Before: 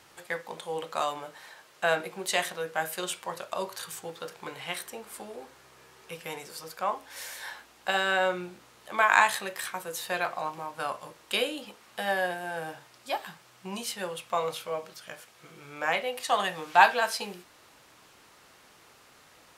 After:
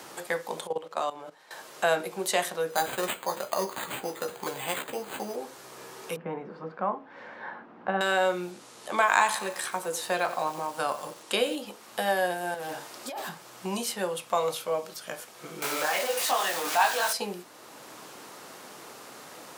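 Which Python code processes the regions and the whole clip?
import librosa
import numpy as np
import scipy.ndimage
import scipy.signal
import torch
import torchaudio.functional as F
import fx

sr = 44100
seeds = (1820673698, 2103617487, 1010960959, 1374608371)

y = fx.chain(x, sr, fx.lowpass(hz=2400.0, slope=6),
    fx.low_shelf(hz=120.0, db=-6.0),
    fx.level_steps(step_db=16), at=(0.67, 1.51))
y = fx.chain(y, sr, fx.resample_bad(factor=8, down='none', up='hold'),
    fx.doubler(ms=15.0, db=-8.0), at=(2.7, 5.36))
y = fx.chain(y, sr, fx.ladder_lowpass(hz=2000.0, resonance_pct=20),
    fx.peak_eq(hz=200.0, db=12.5, octaves=1.2), at=(6.16, 8.01))
y = fx.chain(y, sr, fx.lowpass(hz=11000.0, slope=24),
    fx.echo_crushed(ms=90, feedback_pct=55, bits=7, wet_db=-14), at=(8.51, 11.56))
y = fx.chain(y, sr, fx.highpass(hz=170.0, slope=12),
    fx.over_compress(threshold_db=-39.0, ratio=-1.0),
    fx.clip_hard(threshold_db=-39.0), at=(12.54, 13.29))
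y = fx.chain(y, sr, fx.zero_step(step_db=-21.5),
    fx.highpass(hz=1000.0, slope=6),
    fx.detune_double(cents=50), at=(15.62, 17.13))
y = scipy.signal.sosfilt(scipy.signal.butter(2, 180.0, 'highpass', fs=sr, output='sos'), y)
y = fx.peak_eq(y, sr, hz=2300.0, db=-6.5, octaves=2.0)
y = fx.band_squash(y, sr, depth_pct=40)
y = F.gain(torch.from_numpy(y), 5.5).numpy()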